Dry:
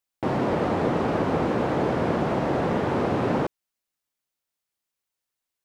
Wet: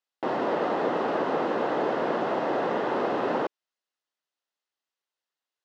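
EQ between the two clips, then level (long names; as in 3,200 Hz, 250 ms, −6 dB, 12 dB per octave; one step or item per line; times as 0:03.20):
band-pass filter 360–4,800 Hz
notch filter 2,300 Hz, Q 9
0.0 dB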